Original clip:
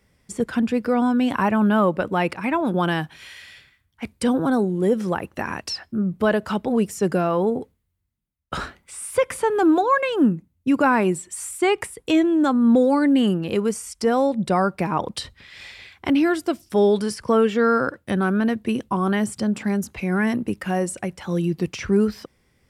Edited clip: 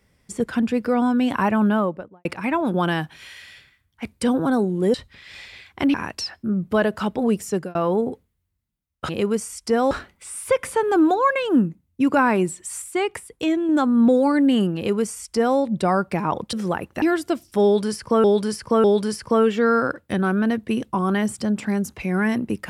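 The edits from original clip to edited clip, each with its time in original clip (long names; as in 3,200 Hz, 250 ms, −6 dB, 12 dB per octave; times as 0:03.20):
0:01.59–0:02.25: fade out and dull
0:04.94–0:05.43: swap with 0:15.20–0:16.20
0:06.98–0:07.24: fade out
0:11.49–0:12.36: clip gain −3.5 dB
0:13.43–0:14.25: duplicate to 0:08.58
0:16.82–0:17.42: repeat, 3 plays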